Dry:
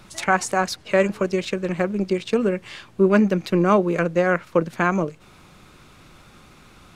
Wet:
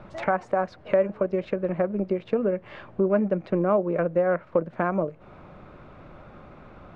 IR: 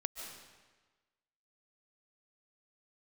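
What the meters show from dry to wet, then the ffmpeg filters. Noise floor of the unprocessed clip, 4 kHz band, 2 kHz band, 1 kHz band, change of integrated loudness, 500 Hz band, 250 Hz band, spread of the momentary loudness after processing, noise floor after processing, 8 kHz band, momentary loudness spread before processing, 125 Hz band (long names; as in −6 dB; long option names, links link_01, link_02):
−50 dBFS, below −15 dB, −10.0 dB, −5.5 dB, −4.5 dB, −2.5 dB, −6.0 dB, 5 LU, −50 dBFS, can't be measured, 7 LU, −6.0 dB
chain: -af "lowpass=1500,equalizer=frequency=600:width_type=o:width=0.52:gain=8.5,acompressor=threshold=-30dB:ratio=2,volume=2.5dB"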